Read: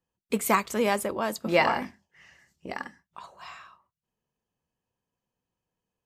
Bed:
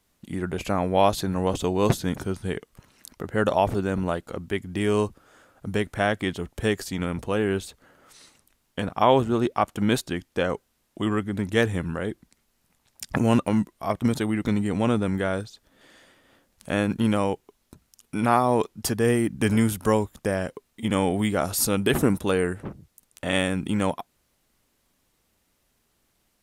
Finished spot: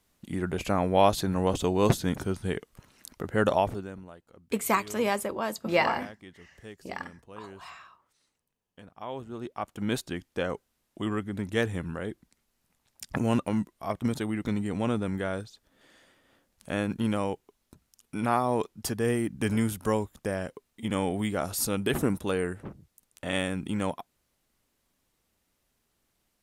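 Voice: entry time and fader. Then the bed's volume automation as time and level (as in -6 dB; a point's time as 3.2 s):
4.20 s, -2.0 dB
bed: 3.55 s -1.5 dB
4.1 s -21.5 dB
8.96 s -21.5 dB
10 s -5.5 dB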